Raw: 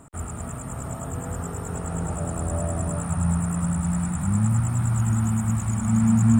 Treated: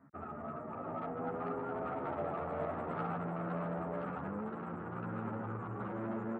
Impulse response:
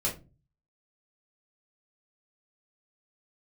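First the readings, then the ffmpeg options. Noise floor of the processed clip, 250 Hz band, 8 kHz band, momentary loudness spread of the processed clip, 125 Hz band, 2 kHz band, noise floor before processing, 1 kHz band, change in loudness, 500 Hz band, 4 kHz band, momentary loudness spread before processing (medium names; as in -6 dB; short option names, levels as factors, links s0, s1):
-45 dBFS, -16.5 dB, under -40 dB, 5 LU, -22.0 dB, -7.0 dB, -34 dBFS, -4.0 dB, -14.5 dB, -2.5 dB, no reading, 11 LU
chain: -filter_complex "[0:a]aemphasis=mode=reproduction:type=bsi,afftdn=nr=19:nf=-33,highshelf=f=2600:t=q:w=3:g=-14,acrossover=split=2600[s0][s1];[s0]alimiter=limit=0.299:level=0:latency=1:release=75[s2];[s1]acontrast=85[s3];[s2][s3]amix=inputs=2:normalize=0,asplit=2[s4][s5];[s5]highpass=f=720:p=1,volume=8.91,asoftclip=type=tanh:threshold=0.316[s6];[s4][s6]amix=inputs=2:normalize=0,lowpass=f=1200:p=1,volume=0.501,asoftclip=type=tanh:threshold=0.112,highpass=310,lowpass=6600,asplit=2[s7][s8];[s8]aecho=0:1:1025:0.501[s9];[s7][s9]amix=inputs=2:normalize=0,asplit=2[s10][s11];[s11]adelay=11.5,afreqshift=0.47[s12];[s10][s12]amix=inputs=2:normalize=1,volume=0.562"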